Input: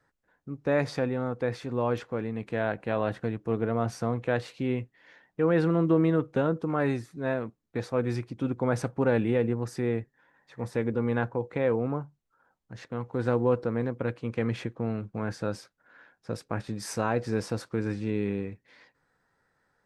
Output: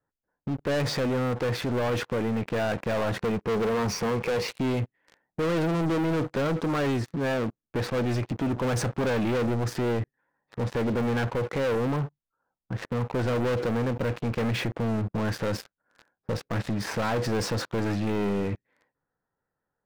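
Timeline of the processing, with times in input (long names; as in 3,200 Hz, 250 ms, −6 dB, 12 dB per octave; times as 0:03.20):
0:03.17–0:04.49: EQ curve with evenly spaced ripples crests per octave 0.83, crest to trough 11 dB
whole clip: low-pass that shuts in the quiet parts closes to 1,200 Hz, open at −22 dBFS; leveller curve on the samples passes 5; brickwall limiter −23 dBFS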